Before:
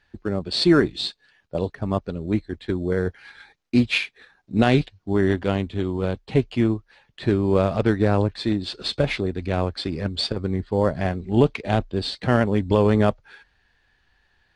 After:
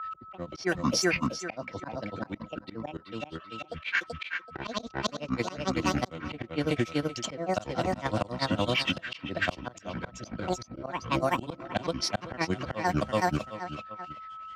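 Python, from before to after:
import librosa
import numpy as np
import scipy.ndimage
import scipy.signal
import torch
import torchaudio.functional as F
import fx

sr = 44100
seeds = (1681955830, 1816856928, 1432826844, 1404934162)

p1 = fx.granulator(x, sr, seeds[0], grain_ms=112.0, per_s=11.0, spray_ms=100.0, spread_st=12)
p2 = fx.notch_comb(p1, sr, f0_hz=420.0)
p3 = p2 + 10.0 ** (-46.0 / 20.0) * np.sin(2.0 * np.pi * 1300.0 * np.arange(len(p2)) / sr)
p4 = fx.tilt_eq(p3, sr, slope=2.5)
p5 = p4 + fx.echo_feedback(p4, sr, ms=382, feedback_pct=20, wet_db=-4.5, dry=0)
p6 = fx.auto_swell(p5, sr, attack_ms=381.0)
p7 = fx.level_steps(p6, sr, step_db=17)
p8 = p6 + (p7 * librosa.db_to_amplitude(1.5))
p9 = fx.env_lowpass(p8, sr, base_hz=2300.0, full_db=-22.5)
y = fx.band_squash(p9, sr, depth_pct=40)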